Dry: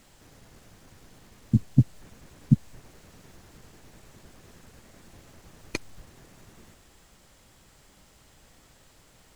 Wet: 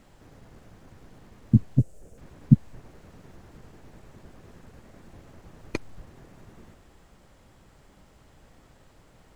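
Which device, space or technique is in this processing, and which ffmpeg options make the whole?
through cloth: -filter_complex "[0:a]highshelf=f=2400:g=-12.5,asettb=1/sr,asplit=3[s0][s1][s2];[s0]atrim=end=1.784[s3];[s1]atrim=start=1.78:end=2.18,asetpts=PTS-STARTPTS,afade=t=in:d=0.004:c=qsin,afade=t=out:st=0.396:d=0.004:c=qsin,equalizer=f=125:t=o:w=1:g=-5,equalizer=f=250:t=o:w=1:g=-7,equalizer=f=500:t=o:w=1:g=7,equalizer=f=1000:t=o:w=1:g=-11,equalizer=f=2000:t=o:w=1:g=-8,equalizer=f=4000:t=o:w=1:g=-10,equalizer=f=8000:t=o:w=1:g=9[s4];[s2]atrim=start=2.176[s5];[s3][s4]acrossfade=d=0.004:c1=hsin:c2=qsin[s6];[s6][s5]acrossfade=d=0.004:c1=qsin:c2=hsin,volume=1.5"

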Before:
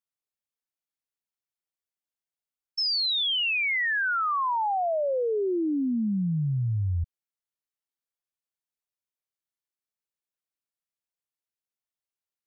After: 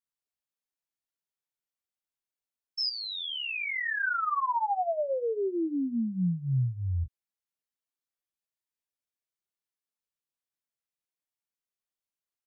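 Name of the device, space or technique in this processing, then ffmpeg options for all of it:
double-tracked vocal: -filter_complex "[0:a]asplit=2[s0][s1];[s1]adelay=16,volume=0.224[s2];[s0][s2]amix=inputs=2:normalize=0,flanger=delay=17:depth=6:speed=0.23,asettb=1/sr,asplit=3[s3][s4][s5];[s3]atrim=end=2.894[s6];[s4]atrim=start=2.89:end=4.03,asetpts=PTS-STARTPTS,afade=t=in:d=0.004:c=qsin,afade=t=out:st=1.136:d=0.004:c=qsin,tiltshelf=f=1400:g=10[s7];[s5]atrim=start=4.026[s8];[s6][s7]acrossfade=d=0.004:c1=hsin:c2=qsin[s9];[s9][s8]acrossfade=d=0.004:c1=qsin:c2=hsin"

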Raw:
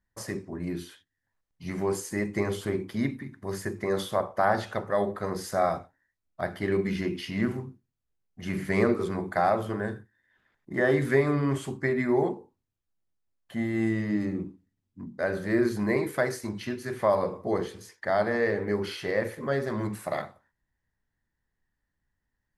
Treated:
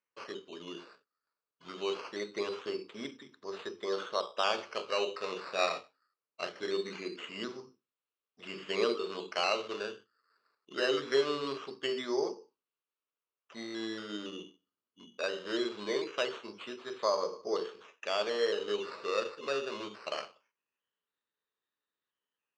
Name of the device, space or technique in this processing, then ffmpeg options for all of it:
circuit-bent sampling toy: -filter_complex "[0:a]asettb=1/sr,asplit=3[s0][s1][s2];[s0]atrim=end=4.774[s3];[s1]atrim=start=4.77:end=6.7,asetpts=PTS-STARTPTS,afade=t=in:d=0.004:c=qsin,afade=t=out:st=1.926:d=0.004:c=qsin,asplit=2[s4][s5];[s5]adelay=22,volume=0.447[s6];[s4][s6]amix=inputs=2:normalize=0,atrim=end_sample=85113[s7];[s2]atrim=start=6.696[s8];[s3][s7]acrossfade=d=0.004:c1=hsin:c2=qsin[s9];[s9][s8]acrossfade=d=0.004:c1=qsin:c2=hsin,acrusher=samples=11:mix=1:aa=0.000001:lfo=1:lforange=6.6:lforate=0.22,highpass=440,equalizer=f=440:t=q:w=4:g=7,equalizer=f=750:t=q:w=4:g=-7,equalizer=f=1200:t=q:w=4:g=6,equalizer=f=1900:t=q:w=4:g=-6,equalizer=f=2800:t=q:w=4:g=6,equalizer=f=4300:t=q:w=4:g=4,lowpass=f=5600:w=0.5412,lowpass=f=5600:w=1.3066,volume=0.531"

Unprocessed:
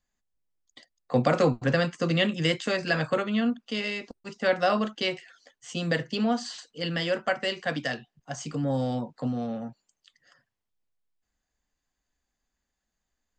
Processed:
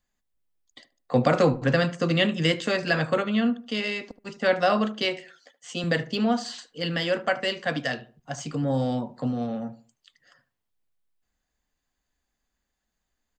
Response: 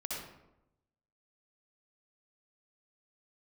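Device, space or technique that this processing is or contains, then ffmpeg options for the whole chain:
exciter from parts: -filter_complex "[0:a]asplit=2[s0][s1];[s1]highpass=4200,asoftclip=type=tanh:threshold=0.0158,highpass=f=4100:w=0.5412,highpass=f=4100:w=1.3066,volume=0.251[s2];[s0][s2]amix=inputs=2:normalize=0,asettb=1/sr,asplit=3[s3][s4][s5];[s3]atrim=end=5.054[s6];[s4]atrim=start=5.05:end=5.84,asetpts=PTS-STARTPTS,afade=t=in:d=0.004:c=qsin,afade=t=out:st=0.786:d=0.004:c=qsin,highpass=200[s7];[s5]atrim=start=5.836[s8];[s6][s7]acrossfade=d=0.004:c1=hsin:c2=qsin[s9];[s9][s8]acrossfade=d=0.004:c1=qsin:c2=hsin,asplit=2[s10][s11];[s11]adelay=75,lowpass=f=1200:p=1,volume=0.2,asplit=2[s12][s13];[s13]adelay=75,lowpass=f=1200:p=1,volume=0.34,asplit=2[s14][s15];[s15]adelay=75,lowpass=f=1200:p=1,volume=0.34[s16];[s10][s12][s14][s16]amix=inputs=4:normalize=0,volume=1.26"

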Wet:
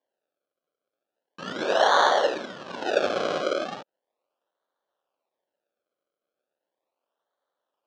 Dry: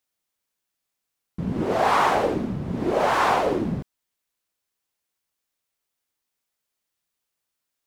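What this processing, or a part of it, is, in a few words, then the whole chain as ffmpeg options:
circuit-bent sampling toy: -filter_complex "[0:a]asettb=1/sr,asplit=3[s0][s1][s2];[s0]atrim=end=1.424[s3];[s1]atrim=start=1.42:end=2.13,asetpts=PTS-STARTPTS,afade=t=in:d=0.004:c=qsin,afade=t=out:st=0.706:d=0.004:c=qsin,lowshelf=f=360:g=5.5[s4];[s2]atrim=start=2.126[s5];[s3][s4]acrossfade=d=0.004:c1=hsin:c2=qsin[s6];[s6][s5]acrossfade=d=0.004:c1=qsin:c2=hsin,acrusher=samples=33:mix=1:aa=0.000001:lfo=1:lforange=33:lforate=0.37,highpass=550,equalizer=f=560:t=q:w=4:g=7,equalizer=f=2100:t=q:w=4:g=-9,equalizer=f=4700:t=q:w=4:g=-3,lowpass=f=5100:w=0.5412,lowpass=f=5100:w=1.3066"

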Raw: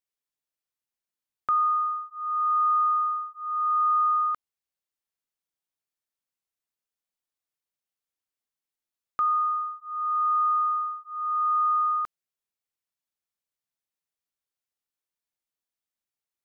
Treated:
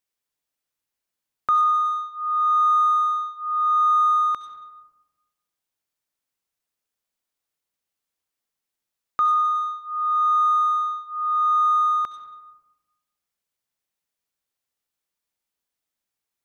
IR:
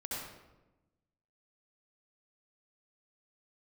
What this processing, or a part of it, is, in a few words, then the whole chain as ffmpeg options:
saturated reverb return: -filter_complex "[0:a]asplit=2[s0][s1];[1:a]atrim=start_sample=2205[s2];[s1][s2]afir=irnorm=-1:irlink=0,asoftclip=type=tanh:threshold=0.0224,volume=0.447[s3];[s0][s3]amix=inputs=2:normalize=0,volume=1.5"

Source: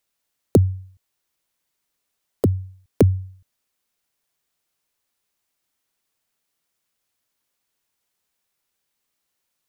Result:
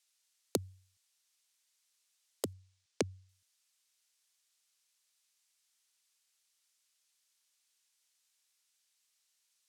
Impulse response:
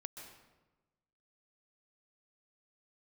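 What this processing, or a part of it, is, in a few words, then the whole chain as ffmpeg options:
piezo pickup straight into a mixer: -filter_complex "[0:a]asettb=1/sr,asplit=3[s0][s1][s2];[s0]atrim=end=2.534[s3];[s1]atrim=start=2.53:end=3.29,asetpts=PTS-STARTPTS,afade=t=in:d=0.004:c=qsin,afade=t=out:st=0.756:d=0.004:c=qsin,lowpass=6900[s4];[s2]atrim=start=3.286[s5];[s3][s4]acrossfade=d=0.004:c1=hsin:c2=qsin[s6];[s6][s5]acrossfade=d=0.004:c1=qsin:c2=hsin,lowpass=6800,aderivative,volume=2.51"

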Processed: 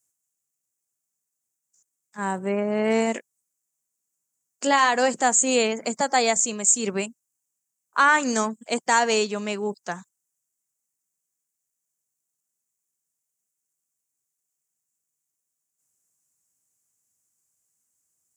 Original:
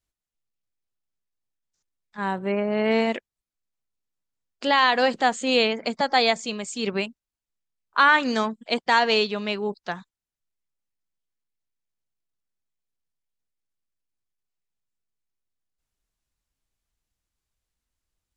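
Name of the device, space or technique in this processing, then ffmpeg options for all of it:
budget condenser microphone: -filter_complex "[0:a]highpass=f=110:w=0.5412,highpass=f=110:w=1.3066,highshelf=f=5300:t=q:w=3:g=11.5,asettb=1/sr,asplit=3[s0][s1][s2];[s0]atrim=end=3.134[s3];[s1]atrim=start=3.13:end=4.89,asetpts=PTS-STARTPTS,afade=t=in:d=0.004:c=qsin,afade=t=out:st=1.756:d=0.004:c=qsin,asplit=2[s4][s5];[s5]adelay=18,volume=0.355[s6];[s4][s6]amix=inputs=2:normalize=0,atrim=end_sample=77616[s7];[s2]atrim=start=4.886[s8];[s3][s7]acrossfade=d=0.004:c1=hsin:c2=qsin[s9];[s9][s8]acrossfade=d=0.004:c1=qsin:c2=hsin"

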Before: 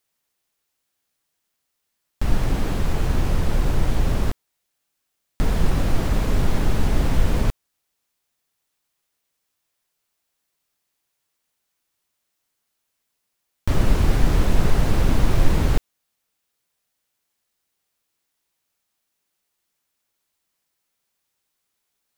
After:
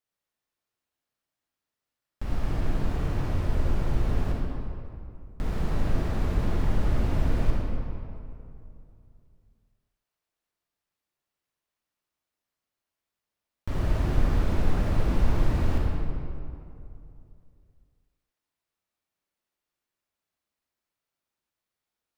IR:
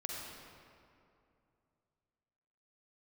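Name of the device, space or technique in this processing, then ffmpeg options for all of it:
swimming-pool hall: -filter_complex "[1:a]atrim=start_sample=2205[s0];[0:a][s0]afir=irnorm=-1:irlink=0,highshelf=f=3900:g=-7,volume=0.447"

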